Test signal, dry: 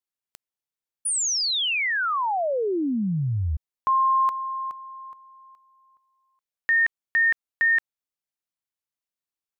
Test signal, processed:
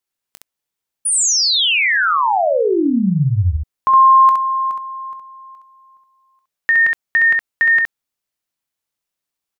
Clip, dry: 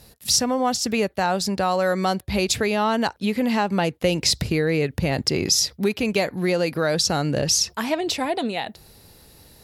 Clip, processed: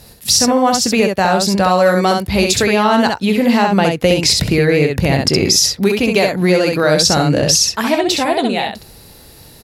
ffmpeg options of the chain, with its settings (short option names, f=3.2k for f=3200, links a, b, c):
-af "aecho=1:1:21|66:0.211|0.631,alimiter=level_in=8.5dB:limit=-1dB:release=50:level=0:latency=1,volume=-1dB"